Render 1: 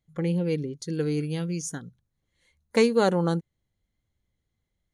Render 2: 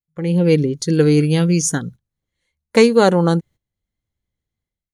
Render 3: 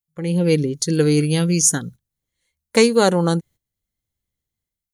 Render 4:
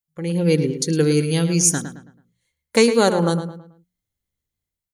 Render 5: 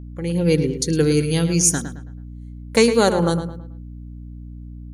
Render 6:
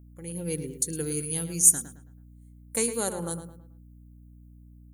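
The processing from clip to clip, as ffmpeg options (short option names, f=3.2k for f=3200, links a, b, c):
-af "agate=range=-18dB:threshold=-49dB:ratio=16:detection=peak,dynaudnorm=f=100:g=7:m=15dB"
-af "highshelf=f=5.3k:g=12,volume=-3dB"
-filter_complex "[0:a]bandreject=f=60:t=h:w=6,bandreject=f=120:t=h:w=6,bandreject=f=180:t=h:w=6,asplit=2[a][b];[b]adelay=109,lowpass=f=3k:p=1,volume=-9dB,asplit=2[c][d];[d]adelay=109,lowpass=f=3k:p=1,volume=0.38,asplit=2[e][f];[f]adelay=109,lowpass=f=3k:p=1,volume=0.38,asplit=2[g][h];[h]adelay=109,lowpass=f=3k:p=1,volume=0.38[i];[a][c][e][g][i]amix=inputs=5:normalize=0,volume=-1dB"
-af "aeval=exprs='val(0)+0.02*(sin(2*PI*60*n/s)+sin(2*PI*2*60*n/s)/2+sin(2*PI*3*60*n/s)/3+sin(2*PI*4*60*n/s)/4+sin(2*PI*5*60*n/s)/5)':c=same"
-af "aexciter=amount=14.1:drive=1.5:freq=7.4k,volume=-15dB"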